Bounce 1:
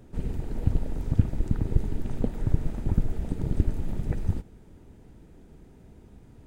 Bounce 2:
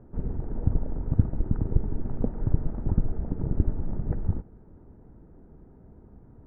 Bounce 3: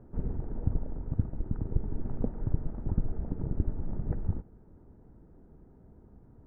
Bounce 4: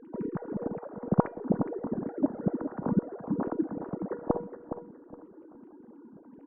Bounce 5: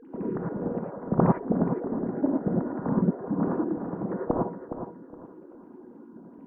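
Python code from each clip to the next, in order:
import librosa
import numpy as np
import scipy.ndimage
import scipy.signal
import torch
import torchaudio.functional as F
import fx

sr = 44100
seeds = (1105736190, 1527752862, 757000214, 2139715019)

y1 = scipy.signal.sosfilt(scipy.signal.butter(4, 1400.0, 'lowpass', fs=sr, output='sos'), x)
y2 = fx.rider(y1, sr, range_db=3, speed_s=0.5)
y2 = F.gain(torch.from_numpy(y2), -5.0).numpy()
y3 = fx.sine_speech(y2, sr)
y3 = fx.comb_fb(y3, sr, f0_hz=480.0, decay_s=0.43, harmonics='all', damping=0.0, mix_pct=70)
y3 = fx.echo_feedback(y3, sr, ms=415, feedback_pct=26, wet_db=-9.5)
y3 = F.gain(torch.from_numpy(y3), 8.0).numpy()
y4 = fx.rev_gated(y3, sr, seeds[0], gate_ms=130, shape='rising', drr_db=-2.0)
y4 = fx.doppler_dist(y4, sr, depth_ms=0.24)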